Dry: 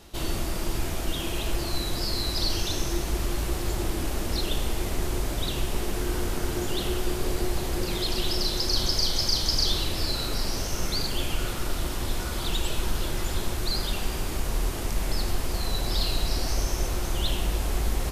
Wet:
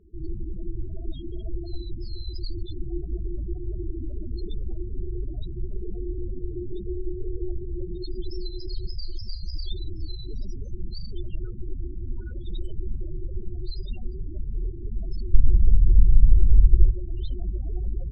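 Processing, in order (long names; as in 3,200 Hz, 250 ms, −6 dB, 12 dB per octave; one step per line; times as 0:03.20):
0:15.34–0:16.91: spectral tilt −3 dB per octave
spectral peaks only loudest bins 8
high-shelf EQ 3,000 Hz −11 dB
level −1.5 dB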